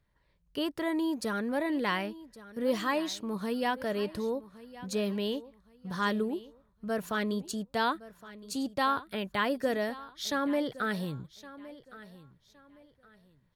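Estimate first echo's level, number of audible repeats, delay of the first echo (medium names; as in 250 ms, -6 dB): -17.5 dB, 2, 1115 ms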